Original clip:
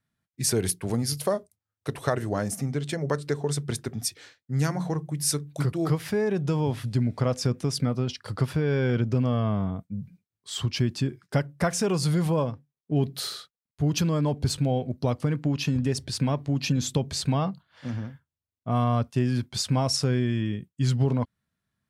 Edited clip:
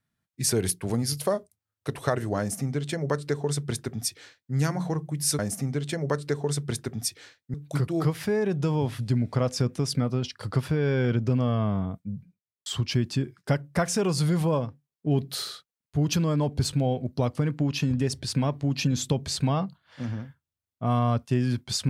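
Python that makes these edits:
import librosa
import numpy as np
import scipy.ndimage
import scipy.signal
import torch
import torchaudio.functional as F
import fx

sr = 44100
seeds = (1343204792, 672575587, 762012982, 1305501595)

y = fx.studio_fade_out(x, sr, start_s=9.87, length_s=0.64)
y = fx.edit(y, sr, fx.duplicate(start_s=2.39, length_s=2.15, to_s=5.39), tone=tone)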